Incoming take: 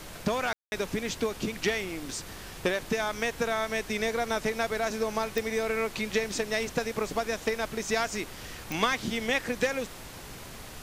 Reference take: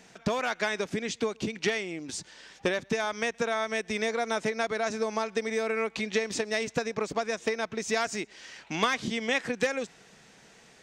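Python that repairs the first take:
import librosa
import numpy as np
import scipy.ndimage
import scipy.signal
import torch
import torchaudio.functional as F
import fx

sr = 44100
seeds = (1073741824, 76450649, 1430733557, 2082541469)

y = fx.fix_declick_ar(x, sr, threshold=10.0)
y = fx.fix_ambience(y, sr, seeds[0], print_start_s=9.91, print_end_s=10.41, start_s=0.53, end_s=0.72)
y = fx.noise_reduce(y, sr, print_start_s=9.91, print_end_s=10.41, reduce_db=12.0)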